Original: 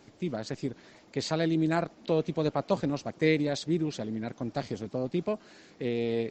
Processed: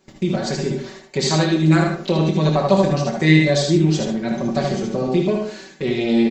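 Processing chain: gate -52 dBFS, range -18 dB; treble shelf 6.3 kHz +6.5 dB; comb 5.3 ms, depth 95%; in parallel at +1 dB: compression, threshold -38 dBFS, peak gain reduction 20.5 dB; on the sum: early reflections 26 ms -8.5 dB, 77 ms -5 dB; on a send at -4.5 dB: reverberation RT60 0.35 s, pre-delay 52 ms; on the sum: trim +4.5 dB

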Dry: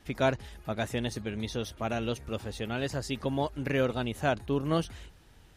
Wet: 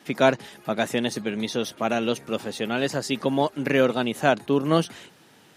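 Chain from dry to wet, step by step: high-pass 160 Hz 24 dB/octave; trim +8 dB

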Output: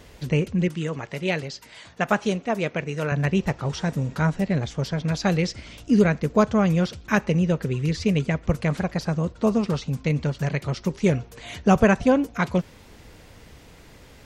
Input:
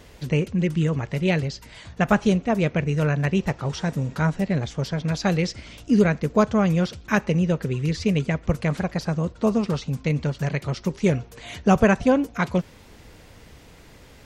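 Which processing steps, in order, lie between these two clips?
0.68–3.12 s: high-pass 360 Hz 6 dB/octave

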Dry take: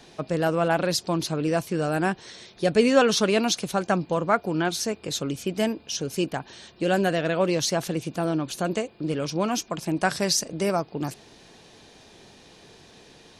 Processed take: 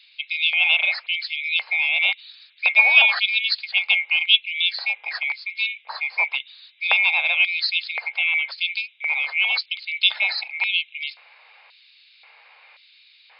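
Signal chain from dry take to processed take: split-band scrambler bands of 2 kHz; dynamic bell 2.9 kHz, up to +5 dB, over -33 dBFS, Q 1.2; LFO high-pass square 0.94 Hz 770–3800 Hz; brick-wall FIR band-pass 430–5200 Hz; trim -1 dB

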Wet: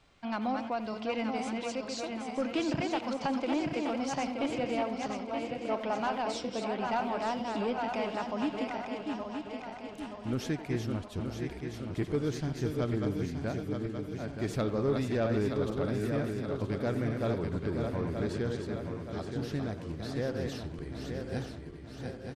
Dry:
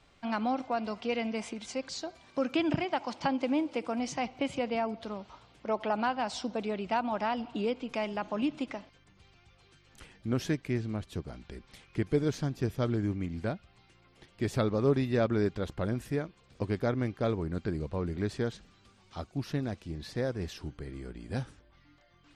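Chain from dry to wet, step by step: backward echo that repeats 462 ms, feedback 72%, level -5 dB; saturation -19.5 dBFS, distortion -20 dB; speakerphone echo 90 ms, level -11 dB; trim -1.5 dB

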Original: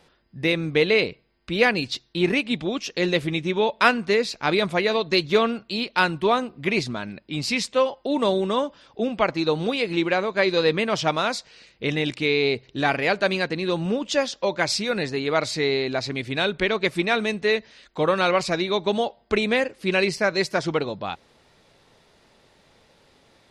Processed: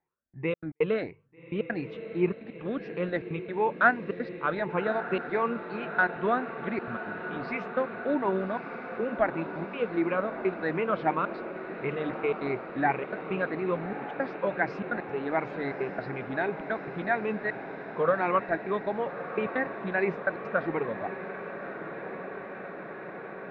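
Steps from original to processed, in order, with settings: drifting ripple filter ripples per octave 0.76, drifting +2.8 Hz, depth 13 dB; gate with hold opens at -44 dBFS; four-pole ladder low-pass 2 kHz, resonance 30%; hum notches 50/100/150 Hz; trance gate "xxxxxx.x.x" 168 bpm -60 dB; on a send: echo that smears into a reverb 1210 ms, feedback 78%, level -11 dB; on the sum: trim -1.5 dB

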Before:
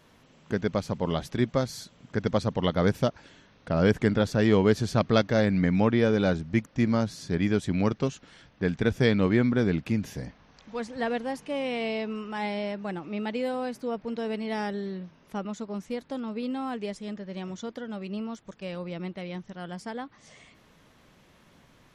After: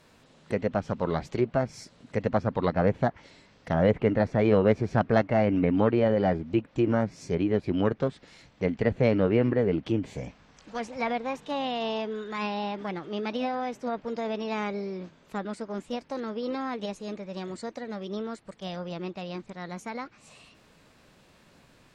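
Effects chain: formant shift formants +4 st; low-pass that closes with the level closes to 2.1 kHz, closed at -22 dBFS

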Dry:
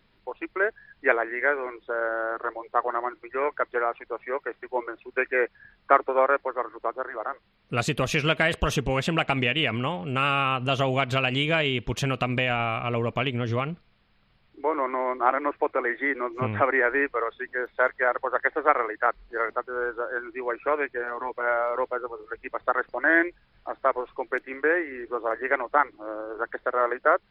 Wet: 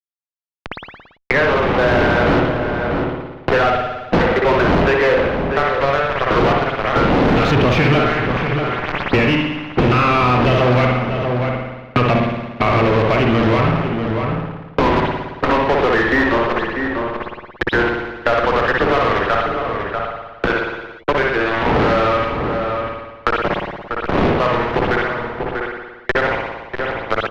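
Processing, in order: wind noise 520 Hz -34 dBFS; Doppler pass-by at 6.79 s, 20 m/s, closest 11 m; de-hum 105.4 Hz, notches 14; in parallel at -1 dB: compression 12:1, threshold -48 dBFS, peak gain reduction 27.5 dB; on the sum: trance gate "...x..xxxxx.." 69 bpm -24 dB; fuzz box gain 51 dB, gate -49 dBFS; on a send at -3 dB: reverberation, pre-delay 56 ms; on the sum: power-law waveshaper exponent 0.5; distance through air 280 m; echo from a far wall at 110 m, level -11 dB; three bands compressed up and down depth 70%; trim -2 dB

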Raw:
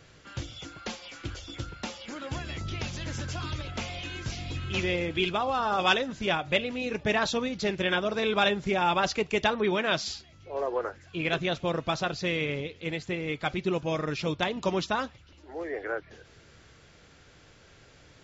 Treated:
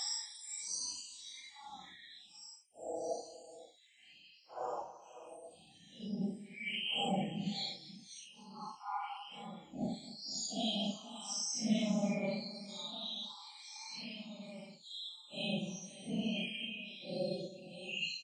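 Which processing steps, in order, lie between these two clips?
random holes in the spectrogram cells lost 76%; high-pass 130 Hz 12 dB/octave; peaking EQ 540 Hz -12 dB 0.22 oct; peak limiter -27 dBFS, peak gain reduction 10.5 dB; pitch shift +3 st; static phaser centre 420 Hz, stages 6; multi-tap echo 43/98/453 ms -16/-16/-15 dB; Paulstretch 5.2×, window 0.05 s, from 9.97 s; trim +3.5 dB

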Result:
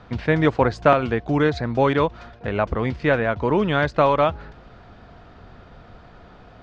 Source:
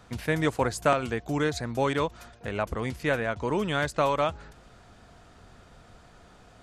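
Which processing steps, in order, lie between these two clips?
low-pass 5 kHz 24 dB/octave; treble shelf 2.9 kHz -8.5 dB; trim +8 dB

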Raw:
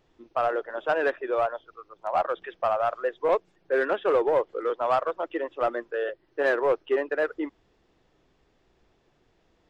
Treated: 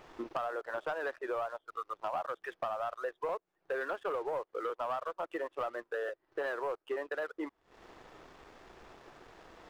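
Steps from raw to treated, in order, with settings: FFT filter 160 Hz 0 dB, 1.2 kHz +13 dB, 3.1 kHz +4 dB; compression 6:1, threshold -43 dBFS, peak gain reduction 31 dB; waveshaping leveller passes 2

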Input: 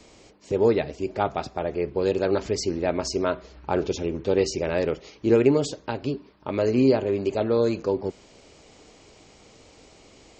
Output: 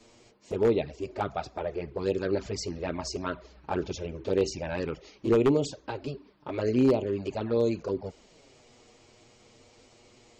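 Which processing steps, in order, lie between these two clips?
touch-sensitive flanger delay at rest 9.2 ms, full sweep at -17 dBFS; wavefolder -12.5 dBFS; trim -2.5 dB

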